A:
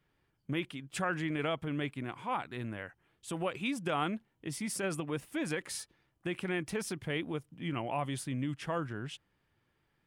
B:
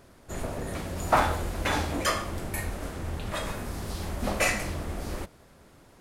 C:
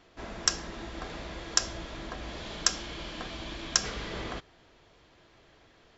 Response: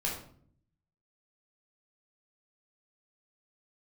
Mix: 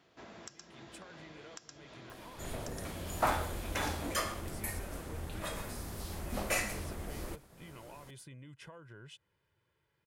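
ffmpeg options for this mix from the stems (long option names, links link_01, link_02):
-filter_complex "[0:a]aecho=1:1:2:0.6,acompressor=threshold=-44dB:ratio=4,volume=-3.5dB[link_01];[1:a]highshelf=frequency=11000:gain=11,acompressor=mode=upward:threshold=-38dB:ratio=2.5,adelay=2100,volume=-8dB,asplit=2[link_02][link_03];[link_03]volume=-20dB[link_04];[2:a]highpass=94,volume=-7dB,asplit=2[link_05][link_06];[link_06]volume=-21.5dB[link_07];[link_01][link_05]amix=inputs=2:normalize=0,highpass=63,acompressor=threshold=-47dB:ratio=20,volume=0dB[link_08];[link_04][link_07]amix=inputs=2:normalize=0,aecho=0:1:118:1[link_09];[link_02][link_08][link_09]amix=inputs=3:normalize=0"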